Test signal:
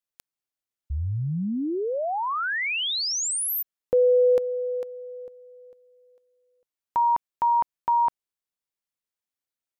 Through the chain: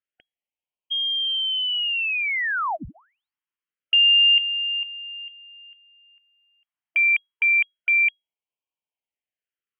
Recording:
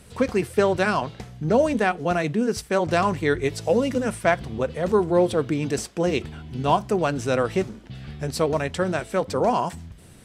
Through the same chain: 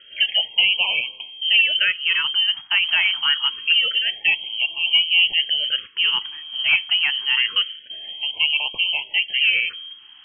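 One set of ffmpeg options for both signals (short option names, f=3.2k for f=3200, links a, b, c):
-af "asoftclip=type=hard:threshold=-12.5dB,lowpass=f=2.8k:t=q:w=0.5098,lowpass=f=2.8k:t=q:w=0.6013,lowpass=f=2.8k:t=q:w=0.9,lowpass=f=2.8k:t=q:w=2.563,afreqshift=-3300,afftfilt=real='re*(1-between(b*sr/1024,450*pow(1600/450,0.5+0.5*sin(2*PI*0.26*pts/sr))/1.41,450*pow(1600/450,0.5+0.5*sin(2*PI*0.26*pts/sr))*1.41))':imag='im*(1-between(b*sr/1024,450*pow(1600/450,0.5+0.5*sin(2*PI*0.26*pts/sr))/1.41,450*pow(1600/450,0.5+0.5*sin(2*PI*0.26*pts/sr))*1.41))':win_size=1024:overlap=0.75,volume=2.5dB"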